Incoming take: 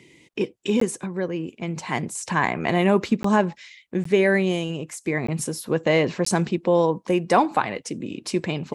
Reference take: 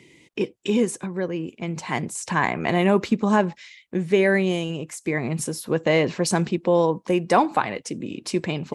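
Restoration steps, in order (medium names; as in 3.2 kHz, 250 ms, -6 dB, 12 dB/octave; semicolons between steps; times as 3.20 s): interpolate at 0.80/3.23/4.04/5.27/6.25 s, 14 ms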